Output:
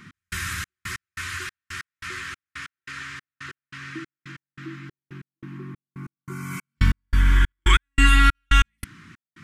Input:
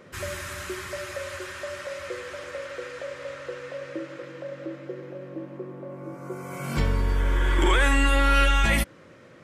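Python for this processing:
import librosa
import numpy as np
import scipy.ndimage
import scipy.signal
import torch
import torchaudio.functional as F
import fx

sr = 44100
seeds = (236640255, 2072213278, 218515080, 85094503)

y = scipy.signal.sosfilt(scipy.signal.cheby1(2, 1.0, [230.0, 1400.0], 'bandstop', fs=sr, output='sos'), x)
y = fx.step_gate(y, sr, bpm=141, pattern='x..xxx..', floor_db=-60.0, edge_ms=4.5)
y = fx.upward_expand(y, sr, threshold_db=-34.0, expansion=1.5, at=(7.52, 8.35))
y = y * librosa.db_to_amplitude(7.5)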